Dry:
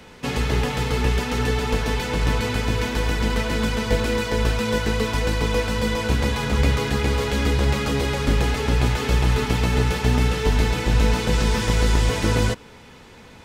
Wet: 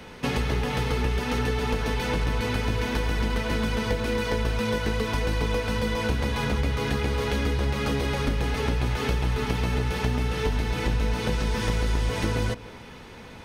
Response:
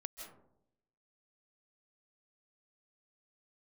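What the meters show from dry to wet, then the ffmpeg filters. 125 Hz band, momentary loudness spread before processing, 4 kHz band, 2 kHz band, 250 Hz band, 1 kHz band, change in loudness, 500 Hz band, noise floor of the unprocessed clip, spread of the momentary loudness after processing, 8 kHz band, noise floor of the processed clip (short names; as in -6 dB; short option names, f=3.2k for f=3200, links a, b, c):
-5.0 dB, 3 LU, -5.0 dB, -4.0 dB, -4.5 dB, -4.0 dB, -4.5 dB, -4.0 dB, -45 dBFS, 1 LU, -7.5 dB, -43 dBFS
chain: -filter_complex "[0:a]bandreject=f=7.4k:w=8.4,acompressor=threshold=-24dB:ratio=6,asplit=2[a][b];[1:a]atrim=start_sample=2205,lowpass=4.3k[c];[b][c]afir=irnorm=-1:irlink=0,volume=-8dB[d];[a][d]amix=inputs=2:normalize=0"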